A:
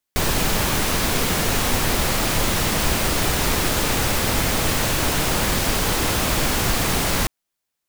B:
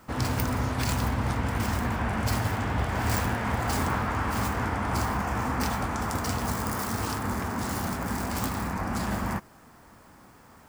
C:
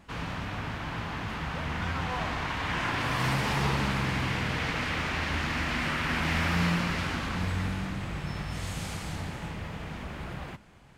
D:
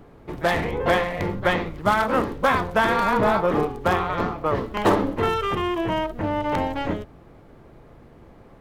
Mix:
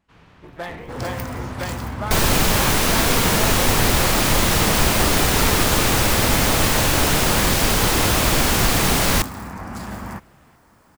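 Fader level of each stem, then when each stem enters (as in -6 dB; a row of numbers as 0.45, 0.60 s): +3.0, -2.0, -16.0, -10.0 dB; 1.95, 0.80, 0.00, 0.15 s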